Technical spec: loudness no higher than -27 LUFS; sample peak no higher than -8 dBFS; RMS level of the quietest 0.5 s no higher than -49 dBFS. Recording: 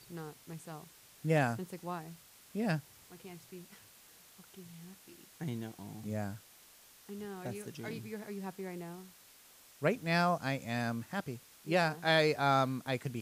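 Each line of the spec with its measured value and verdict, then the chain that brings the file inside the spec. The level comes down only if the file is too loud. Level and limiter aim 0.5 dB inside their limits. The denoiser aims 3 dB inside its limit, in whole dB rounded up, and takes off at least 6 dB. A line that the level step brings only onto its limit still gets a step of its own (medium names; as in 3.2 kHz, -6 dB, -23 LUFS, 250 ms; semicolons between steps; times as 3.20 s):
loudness -35.0 LUFS: pass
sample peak -15.5 dBFS: pass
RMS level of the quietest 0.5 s -60 dBFS: pass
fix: none needed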